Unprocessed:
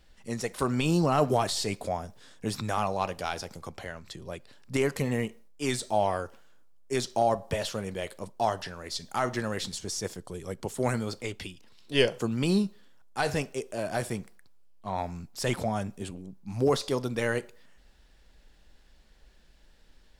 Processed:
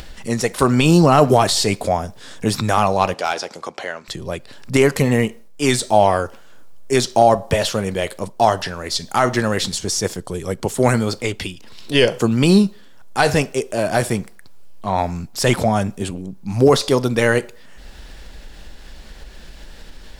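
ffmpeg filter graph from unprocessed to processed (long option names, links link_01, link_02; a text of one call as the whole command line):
ffmpeg -i in.wav -filter_complex "[0:a]asettb=1/sr,asplit=3[link_01][link_02][link_03];[link_01]atrim=end=3.144[link_04];[link_02]atrim=start=3.14:end=4.08,asetpts=PTS-STARTPTS,afade=type=in:duration=0.004:curve=qsin,afade=type=out:start_time=0.936:duration=0.004:curve=qsin,highpass=330,lowpass=7200,asoftclip=type=hard:threshold=-22.5dB[link_05];[link_03]atrim=start=4.076[link_06];[link_04][link_05]acrossfade=duration=0.004:curve1=hsin:curve2=qsin[link_07];[link_07][link_06]acrossfade=duration=0.004:curve1=qsin:curve2=hsin,acompressor=mode=upward:threshold=-39dB:ratio=2.5,alimiter=level_in=13.5dB:limit=-1dB:release=50:level=0:latency=1,volume=-1dB" out.wav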